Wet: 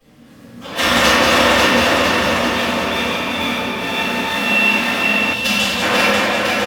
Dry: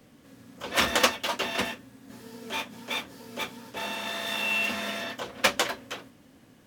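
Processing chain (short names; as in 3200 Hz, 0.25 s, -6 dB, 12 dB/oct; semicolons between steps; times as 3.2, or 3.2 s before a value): reverse delay 0.285 s, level -4 dB; bouncing-ball echo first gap 0.54 s, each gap 0.85×, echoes 5; reverb RT60 3.4 s, pre-delay 3 ms, DRR -19.5 dB; spectral gain 5.33–5.82, 240–2600 Hz -8 dB; gain -10.5 dB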